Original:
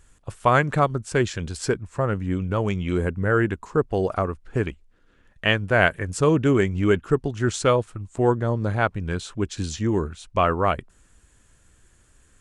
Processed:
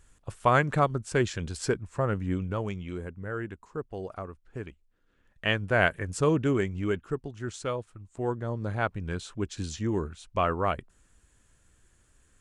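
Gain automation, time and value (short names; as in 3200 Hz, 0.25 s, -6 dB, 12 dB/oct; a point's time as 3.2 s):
2.33 s -4 dB
3.05 s -14 dB
4.69 s -14 dB
5.62 s -5 dB
6.27 s -5 dB
7.37 s -12.5 dB
7.96 s -12.5 dB
8.91 s -6 dB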